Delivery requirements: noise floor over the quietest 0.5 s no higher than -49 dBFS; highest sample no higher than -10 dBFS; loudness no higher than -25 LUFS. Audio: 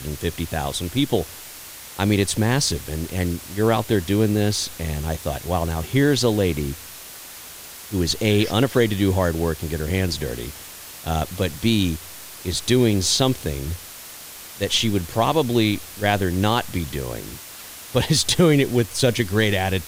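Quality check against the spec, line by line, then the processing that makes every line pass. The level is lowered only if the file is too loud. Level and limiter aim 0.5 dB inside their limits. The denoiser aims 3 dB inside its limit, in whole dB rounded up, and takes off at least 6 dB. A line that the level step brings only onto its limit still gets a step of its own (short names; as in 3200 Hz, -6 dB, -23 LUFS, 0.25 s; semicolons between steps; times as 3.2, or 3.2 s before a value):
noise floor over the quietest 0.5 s -39 dBFS: fail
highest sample -5.0 dBFS: fail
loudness -21.5 LUFS: fail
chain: denoiser 9 dB, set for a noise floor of -39 dBFS; gain -4 dB; limiter -10.5 dBFS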